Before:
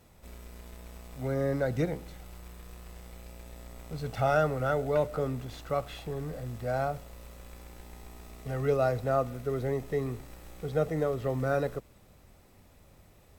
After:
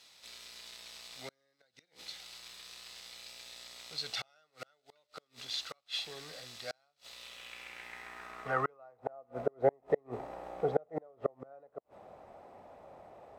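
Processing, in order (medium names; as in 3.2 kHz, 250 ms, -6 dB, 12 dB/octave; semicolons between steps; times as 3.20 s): inverted gate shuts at -22 dBFS, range -37 dB; band-pass sweep 4.2 kHz -> 710 Hz, 7.03–9.21 s; trim +15.5 dB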